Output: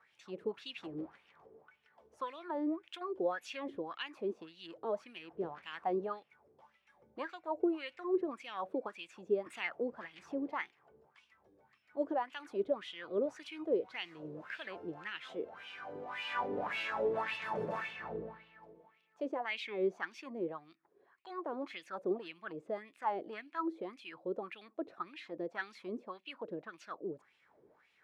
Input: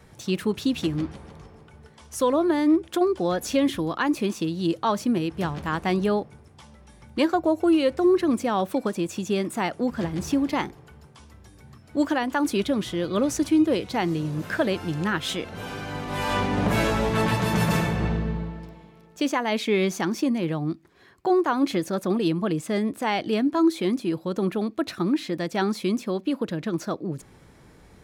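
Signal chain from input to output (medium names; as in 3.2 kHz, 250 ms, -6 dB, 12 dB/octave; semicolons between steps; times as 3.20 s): wah-wah 1.8 Hz 410–2900 Hz, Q 4.3; 9.46–9.93 s: three bands compressed up and down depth 40%; trim -2.5 dB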